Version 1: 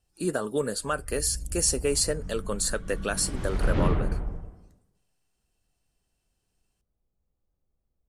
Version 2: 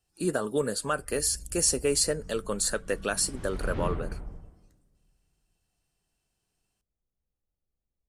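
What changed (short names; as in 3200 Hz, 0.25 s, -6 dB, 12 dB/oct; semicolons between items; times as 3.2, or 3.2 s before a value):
background -8.5 dB; reverb: on, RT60 2.5 s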